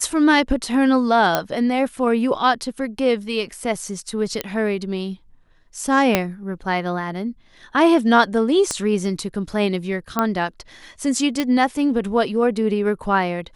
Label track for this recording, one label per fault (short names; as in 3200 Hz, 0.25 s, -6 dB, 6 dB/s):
1.350000	1.350000	pop -3 dBFS
4.410000	4.410000	pop -7 dBFS
6.150000	6.150000	pop -1 dBFS
8.710000	8.710000	pop -9 dBFS
10.190000	10.190000	pop -6 dBFS
11.400000	11.400000	pop -7 dBFS